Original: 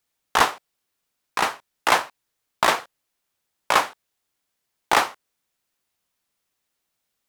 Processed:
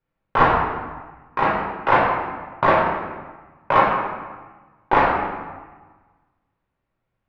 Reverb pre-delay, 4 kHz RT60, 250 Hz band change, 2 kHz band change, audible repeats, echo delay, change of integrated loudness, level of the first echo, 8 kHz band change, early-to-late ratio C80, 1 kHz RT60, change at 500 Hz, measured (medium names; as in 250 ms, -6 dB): 4 ms, 0.90 s, +10.0 dB, +1.5 dB, no echo, no echo, +2.0 dB, no echo, under -25 dB, 4.0 dB, 1.4 s, +7.5 dB